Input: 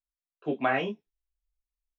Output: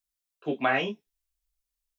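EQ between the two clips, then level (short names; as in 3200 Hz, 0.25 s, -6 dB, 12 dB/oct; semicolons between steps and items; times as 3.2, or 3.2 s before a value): high shelf 2900 Hz +10 dB; 0.0 dB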